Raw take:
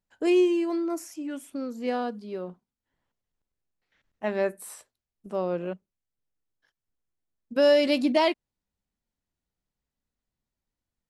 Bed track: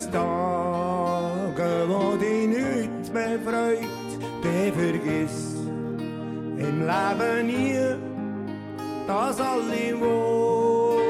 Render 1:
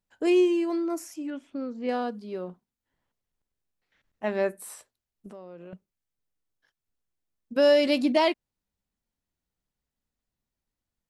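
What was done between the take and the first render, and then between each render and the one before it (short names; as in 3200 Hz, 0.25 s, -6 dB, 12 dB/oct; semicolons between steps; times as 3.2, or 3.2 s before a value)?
1.3–1.89 air absorption 190 m; 5.28–5.73 compressor 4:1, threshold -43 dBFS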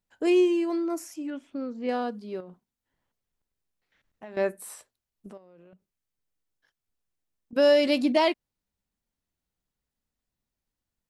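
2.4–4.37 compressor 5:1, threshold -40 dBFS; 5.37–7.53 compressor 12:1, threshold -49 dBFS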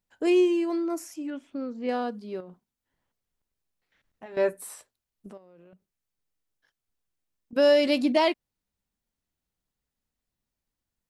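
4.25–4.67 comb 7.2 ms, depth 64%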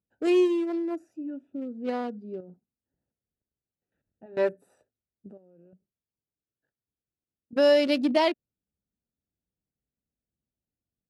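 Wiener smoothing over 41 samples; HPF 63 Hz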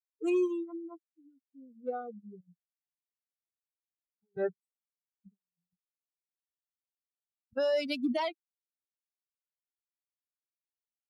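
per-bin expansion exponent 3; limiter -22.5 dBFS, peak gain reduction 9.5 dB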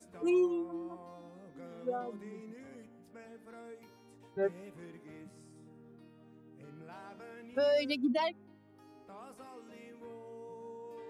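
add bed track -26.5 dB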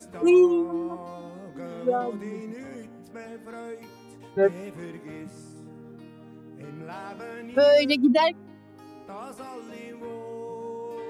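gain +11.5 dB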